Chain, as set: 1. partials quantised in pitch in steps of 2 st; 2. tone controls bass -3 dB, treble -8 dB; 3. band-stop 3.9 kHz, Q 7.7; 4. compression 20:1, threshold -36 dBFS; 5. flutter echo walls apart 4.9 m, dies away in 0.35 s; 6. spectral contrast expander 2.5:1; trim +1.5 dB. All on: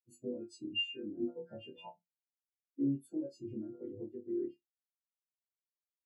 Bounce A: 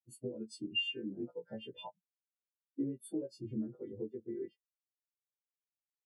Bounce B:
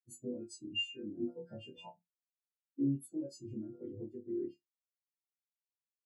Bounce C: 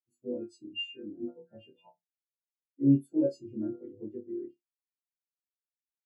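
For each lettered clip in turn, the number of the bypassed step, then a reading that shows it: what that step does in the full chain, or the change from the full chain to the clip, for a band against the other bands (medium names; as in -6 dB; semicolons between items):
5, momentary loudness spread change -1 LU; 2, 125 Hz band +4.5 dB; 4, mean gain reduction 6.5 dB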